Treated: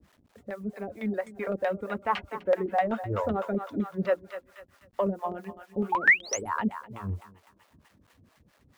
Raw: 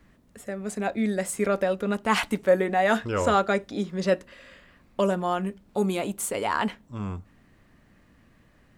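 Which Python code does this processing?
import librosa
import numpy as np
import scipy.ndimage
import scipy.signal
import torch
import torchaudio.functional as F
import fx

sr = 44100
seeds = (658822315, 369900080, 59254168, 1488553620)

p1 = scipy.signal.sosfilt(scipy.signal.butter(4, 49.0, 'highpass', fs=sr, output='sos'), x)
p2 = fx.hum_notches(p1, sr, base_hz=60, count=7)
p3 = fx.dereverb_blind(p2, sr, rt60_s=0.86)
p4 = fx.peak_eq(p3, sr, hz=91.0, db=4.5, octaves=0.76)
p5 = p4 + fx.echo_thinned(p4, sr, ms=249, feedback_pct=58, hz=780.0, wet_db=-10, dry=0)
p6 = fx.spec_paint(p5, sr, seeds[0], shape='rise', start_s=5.92, length_s=0.57, low_hz=830.0, high_hz=12000.0, level_db=-14.0)
p7 = 10.0 ** (-25.0 / 20.0) * np.tanh(p6 / 10.0 ** (-25.0 / 20.0))
p8 = p6 + (p7 * 10.0 ** (-8.5 / 20.0))
p9 = fx.filter_lfo_lowpass(p8, sr, shape='saw_down', hz=7.9, low_hz=600.0, high_hz=3300.0, q=0.75)
p10 = fx.quant_dither(p9, sr, seeds[1], bits=10, dither='none')
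y = fx.harmonic_tremolo(p10, sr, hz=4.5, depth_pct=100, crossover_hz=460.0)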